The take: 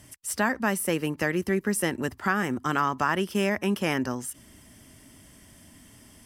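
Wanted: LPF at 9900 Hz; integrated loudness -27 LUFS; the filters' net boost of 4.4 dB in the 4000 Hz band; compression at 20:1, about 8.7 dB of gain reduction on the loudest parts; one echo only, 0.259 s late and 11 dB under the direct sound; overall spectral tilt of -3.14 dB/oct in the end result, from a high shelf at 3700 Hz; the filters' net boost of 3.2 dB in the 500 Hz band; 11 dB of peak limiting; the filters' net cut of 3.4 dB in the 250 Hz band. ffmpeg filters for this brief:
-af "lowpass=9.9k,equalizer=f=250:t=o:g=-7,equalizer=f=500:t=o:g=6.5,highshelf=f=3.7k:g=3.5,equalizer=f=4k:t=o:g=4.5,acompressor=threshold=-26dB:ratio=20,alimiter=level_in=0.5dB:limit=-24dB:level=0:latency=1,volume=-0.5dB,aecho=1:1:259:0.282,volume=8.5dB"

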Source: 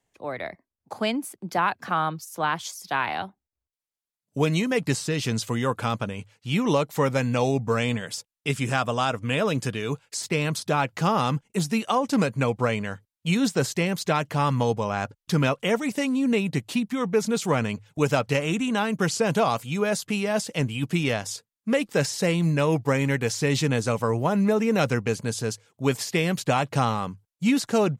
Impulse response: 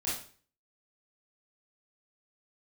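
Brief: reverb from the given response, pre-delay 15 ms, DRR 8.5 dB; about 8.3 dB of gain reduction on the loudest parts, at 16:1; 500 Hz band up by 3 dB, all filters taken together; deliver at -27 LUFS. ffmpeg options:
-filter_complex "[0:a]equalizer=f=500:t=o:g=3.5,acompressor=threshold=-23dB:ratio=16,asplit=2[a][b];[1:a]atrim=start_sample=2205,adelay=15[c];[b][c]afir=irnorm=-1:irlink=0,volume=-13.5dB[d];[a][d]amix=inputs=2:normalize=0,volume=1.5dB"

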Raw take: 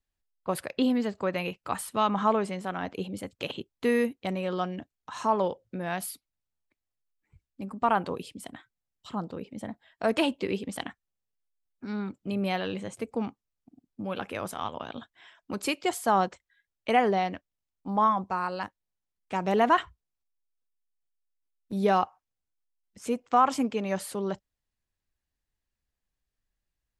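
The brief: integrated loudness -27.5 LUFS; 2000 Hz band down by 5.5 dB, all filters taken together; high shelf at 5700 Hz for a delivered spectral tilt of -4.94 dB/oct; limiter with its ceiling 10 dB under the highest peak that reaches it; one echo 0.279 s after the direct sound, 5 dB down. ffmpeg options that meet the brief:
-af "equalizer=f=2k:t=o:g=-8,highshelf=f=5.7k:g=4.5,alimiter=limit=-22dB:level=0:latency=1,aecho=1:1:279:0.562,volume=6dB"

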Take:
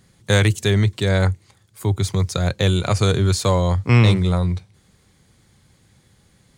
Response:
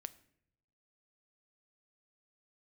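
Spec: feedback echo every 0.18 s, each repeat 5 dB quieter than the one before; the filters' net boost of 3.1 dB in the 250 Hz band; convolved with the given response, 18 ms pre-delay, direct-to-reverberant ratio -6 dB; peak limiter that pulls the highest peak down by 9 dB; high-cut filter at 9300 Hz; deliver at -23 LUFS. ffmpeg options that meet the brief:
-filter_complex "[0:a]lowpass=9.3k,equalizer=f=250:t=o:g=4.5,alimiter=limit=-11.5dB:level=0:latency=1,aecho=1:1:180|360|540|720|900|1080|1260:0.562|0.315|0.176|0.0988|0.0553|0.031|0.0173,asplit=2[a][b];[1:a]atrim=start_sample=2205,adelay=18[c];[b][c]afir=irnorm=-1:irlink=0,volume=10.5dB[d];[a][d]amix=inputs=2:normalize=0,volume=-9.5dB"

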